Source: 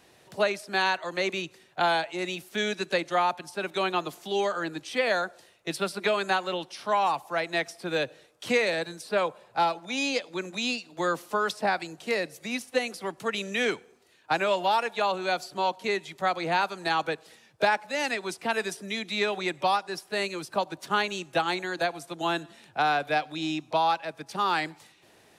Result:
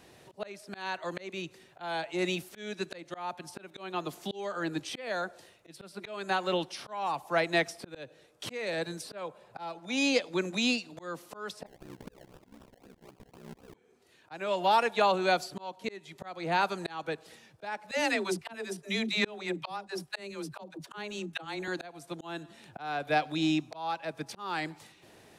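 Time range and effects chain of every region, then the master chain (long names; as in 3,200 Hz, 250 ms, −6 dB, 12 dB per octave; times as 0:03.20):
0:11.66–0:13.74: downward compressor 10 to 1, threshold −35 dBFS + sample-and-hold swept by an LFO 29×, swing 60% 3.9 Hz + ring modulation 32 Hz
0:17.91–0:21.68: noise gate −42 dBFS, range −11 dB + all-pass dispersion lows, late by 87 ms, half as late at 320 Hz
whole clip: low-shelf EQ 460 Hz +5 dB; volume swells 497 ms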